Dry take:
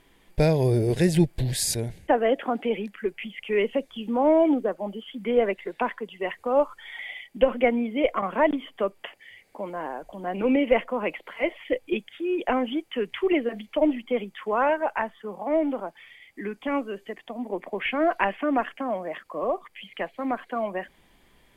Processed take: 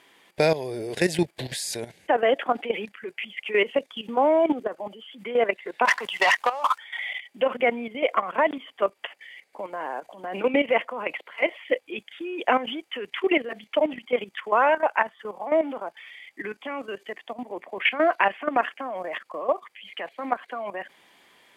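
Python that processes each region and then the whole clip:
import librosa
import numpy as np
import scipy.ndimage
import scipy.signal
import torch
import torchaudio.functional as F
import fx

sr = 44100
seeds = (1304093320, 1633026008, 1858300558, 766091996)

y = fx.chain(x, sr, fx.low_shelf_res(hz=580.0, db=-10.5, q=1.5),
    fx.over_compress(threshold_db=-34.0, ratio=-1.0),
    fx.leveller(passes=3), at=(5.85, 6.78))
y = fx.weighting(y, sr, curve='A')
y = fx.level_steps(y, sr, step_db=13)
y = y * 10.0 ** (7.5 / 20.0)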